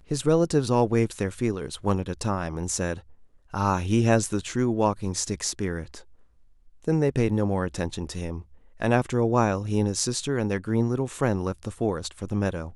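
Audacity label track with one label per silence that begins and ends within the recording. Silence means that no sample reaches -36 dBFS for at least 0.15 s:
2.990000	3.540000	silence
6.010000	6.840000	silence
8.410000	8.800000	silence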